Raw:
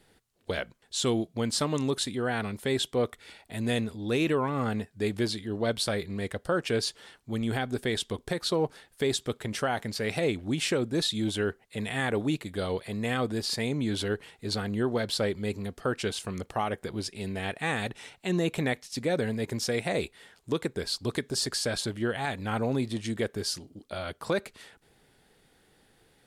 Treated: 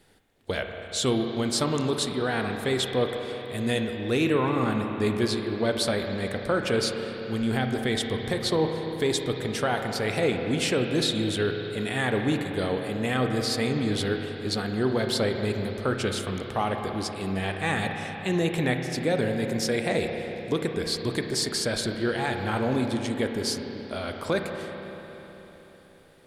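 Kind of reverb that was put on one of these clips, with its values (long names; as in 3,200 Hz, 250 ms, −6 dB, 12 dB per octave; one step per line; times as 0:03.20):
spring reverb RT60 3.9 s, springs 31/47 ms, chirp 30 ms, DRR 3.5 dB
level +2 dB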